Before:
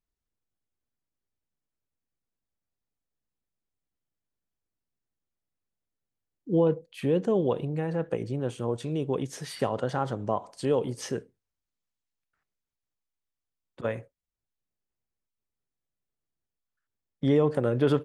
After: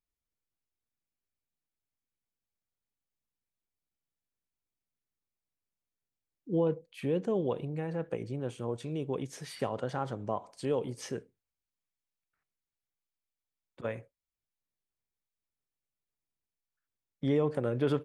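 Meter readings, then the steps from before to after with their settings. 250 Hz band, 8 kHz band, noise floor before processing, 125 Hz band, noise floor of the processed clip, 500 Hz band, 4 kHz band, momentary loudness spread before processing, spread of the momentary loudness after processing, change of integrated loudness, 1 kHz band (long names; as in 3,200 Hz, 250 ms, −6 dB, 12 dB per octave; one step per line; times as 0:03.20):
−5.5 dB, −5.5 dB, below −85 dBFS, −5.5 dB, below −85 dBFS, −5.5 dB, −5.5 dB, 10 LU, 9 LU, −5.5 dB, −5.5 dB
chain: parametric band 2,300 Hz +4.5 dB 0.2 octaves
level −5.5 dB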